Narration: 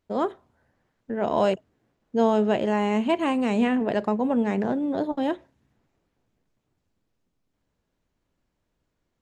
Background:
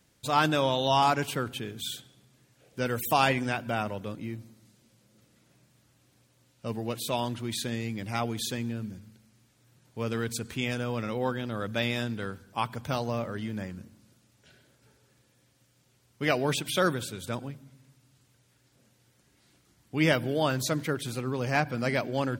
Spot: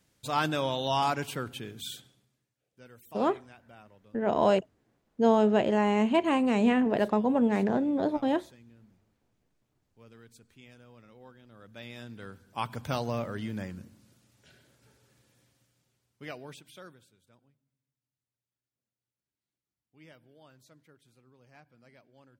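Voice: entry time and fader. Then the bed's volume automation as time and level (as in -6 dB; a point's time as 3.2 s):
3.05 s, -1.5 dB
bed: 2.07 s -4 dB
2.56 s -23 dB
11.4 s -23 dB
12.75 s -1 dB
15.4 s -1 dB
17.26 s -30.5 dB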